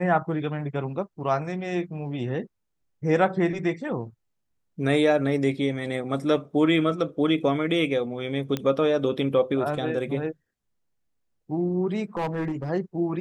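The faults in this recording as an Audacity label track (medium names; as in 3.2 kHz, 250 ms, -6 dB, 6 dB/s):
8.570000	8.570000	pop -14 dBFS
12.170000	12.700000	clipped -23.5 dBFS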